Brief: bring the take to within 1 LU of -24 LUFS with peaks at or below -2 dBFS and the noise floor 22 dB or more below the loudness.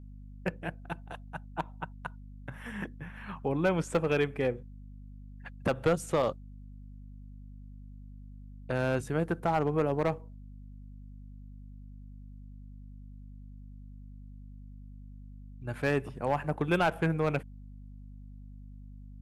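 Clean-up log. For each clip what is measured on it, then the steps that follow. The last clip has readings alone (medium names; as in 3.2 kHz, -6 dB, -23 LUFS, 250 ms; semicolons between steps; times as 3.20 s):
clipped samples 0.3%; clipping level -19.0 dBFS; hum 50 Hz; highest harmonic 250 Hz; hum level -45 dBFS; loudness -32.0 LUFS; peak level -19.0 dBFS; loudness target -24.0 LUFS
-> clip repair -19 dBFS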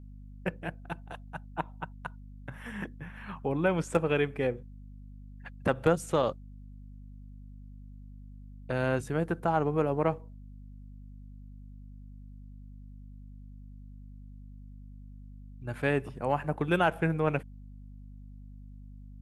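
clipped samples 0.0%; hum 50 Hz; highest harmonic 250 Hz; hum level -45 dBFS
-> hum notches 50/100/150/200/250 Hz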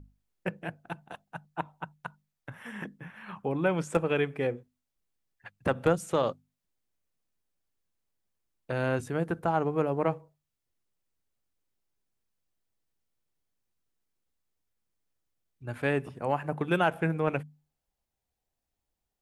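hum not found; loudness -30.5 LUFS; peak level -10.5 dBFS; loudness target -24.0 LUFS
-> trim +6.5 dB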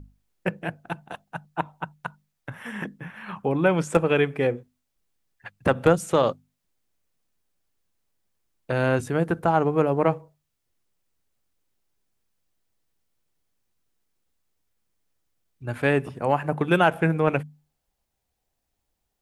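loudness -24.0 LUFS; peak level -4.5 dBFS; noise floor -79 dBFS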